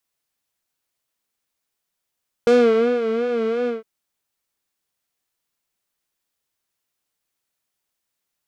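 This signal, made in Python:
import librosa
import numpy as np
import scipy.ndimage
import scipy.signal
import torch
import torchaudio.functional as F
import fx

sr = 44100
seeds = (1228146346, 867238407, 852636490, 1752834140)

y = fx.sub_patch_vibrato(sr, seeds[0], note=70, wave='triangle', wave2='saw', interval_st=-12, detune_cents=27, level2_db=-15.0, sub_db=-11.5, noise_db=-30.0, kind='lowpass', cutoff_hz=2300.0, q=0.84, env_oct=1.5, env_decay_s=0.22, env_sustain_pct=30, attack_ms=1.0, decay_s=0.53, sustain_db=-9.0, release_s=0.16, note_s=1.2, lfo_hz=2.8, vibrato_cents=87)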